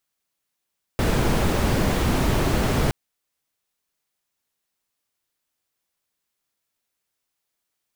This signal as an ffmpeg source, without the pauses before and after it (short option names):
-f lavfi -i "anoisesrc=c=brown:a=0.468:d=1.92:r=44100:seed=1"